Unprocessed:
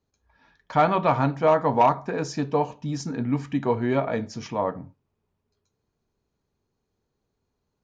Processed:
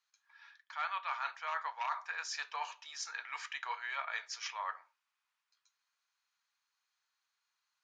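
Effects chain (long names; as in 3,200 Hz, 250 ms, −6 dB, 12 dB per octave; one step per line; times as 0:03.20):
inverse Chebyshev high-pass filter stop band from 210 Hz, stop band 80 dB
high-shelf EQ 6,100 Hz +5 dB
reversed playback
downward compressor 5 to 1, threshold −40 dBFS, peak gain reduction 16 dB
reversed playback
high-frequency loss of the air 74 metres
level +5 dB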